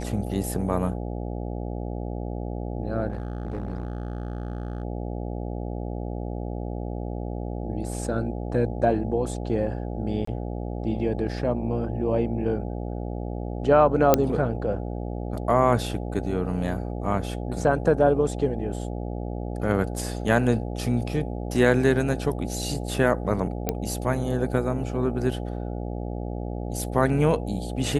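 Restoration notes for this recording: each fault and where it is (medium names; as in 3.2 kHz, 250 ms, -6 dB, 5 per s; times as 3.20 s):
buzz 60 Hz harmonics 14 -31 dBFS
3.10–4.83 s: clipped -26 dBFS
10.25–10.27 s: dropout 24 ms
14.14 s: pop -3 dBFS
23.69 s: pop -9 dBFS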